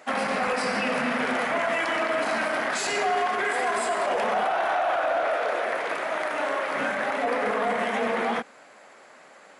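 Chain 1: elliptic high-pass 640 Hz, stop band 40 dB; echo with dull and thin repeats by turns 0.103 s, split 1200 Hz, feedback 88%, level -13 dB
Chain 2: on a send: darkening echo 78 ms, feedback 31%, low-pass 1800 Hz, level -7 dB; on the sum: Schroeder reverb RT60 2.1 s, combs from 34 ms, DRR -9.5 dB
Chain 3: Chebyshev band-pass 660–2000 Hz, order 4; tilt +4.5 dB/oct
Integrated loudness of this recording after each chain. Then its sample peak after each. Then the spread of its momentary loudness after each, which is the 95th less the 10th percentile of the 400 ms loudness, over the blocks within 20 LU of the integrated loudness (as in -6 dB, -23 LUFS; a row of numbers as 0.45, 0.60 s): -26.5, -15.0, -26.5 LUFS; -14.5, -2.0, -14.5 dBFS; 5, 5, 3 LU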